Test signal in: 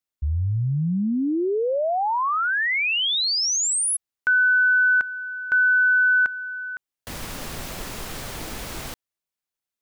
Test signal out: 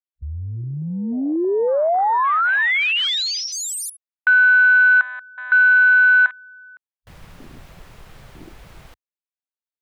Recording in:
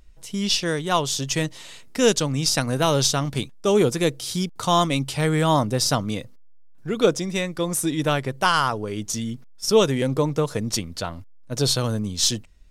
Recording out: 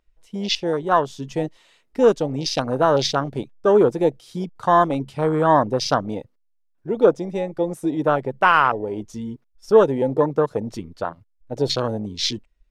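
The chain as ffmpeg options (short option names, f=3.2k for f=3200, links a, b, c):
-af "apsyclip=8.5dB,afwtdn=0.141,bass=f=250:g=-11,treble=f=4k:g=-9,volume=-3dB"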